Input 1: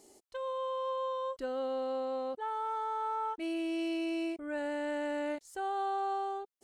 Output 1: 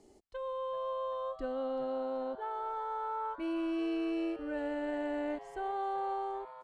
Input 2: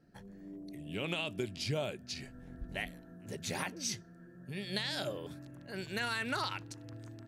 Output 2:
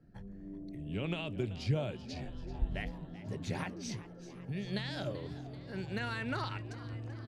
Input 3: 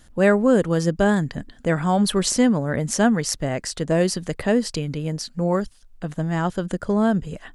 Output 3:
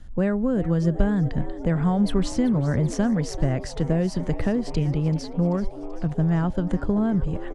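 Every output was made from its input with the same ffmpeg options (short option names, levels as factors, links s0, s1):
-filter_complex "[0:a]acrossover=split=140[s0][s1];[s1]acompressor=threshold=0.0794:ratio=6[s2];[s0][s2]amix=inputs=2:normalize=0,aemphasis=mode=reproduction:type=bsi,asplit=7[s3][s4][s5][s6][s7][s8][s9];[s4]adelay=385,afreqshift=120,volume=0.158[s10];[s5]adelay=770,afreqshift=240,volume=0.0977[s11];[s6]adelay=1155,afreqshift=360,volume=0.061[s12];[s7]adelay=1540,afreqshift=480,volume=0.0376[s13];[s8]adelay=1925,afreqshift=600,volume=0.0234[s14];[s9]adelay=2310,afreqshift=720,volume=0.0145[s15];[s3][s10][s11][s12][s13][s14][s15]amix=inputs=7:normalize=0,volume=0.75"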